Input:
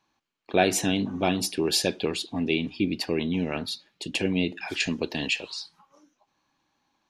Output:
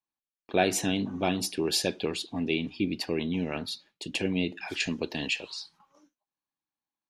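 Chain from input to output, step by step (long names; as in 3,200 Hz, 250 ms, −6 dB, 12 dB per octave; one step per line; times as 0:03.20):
noise gate with hold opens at −47 dBFS
level −3 dB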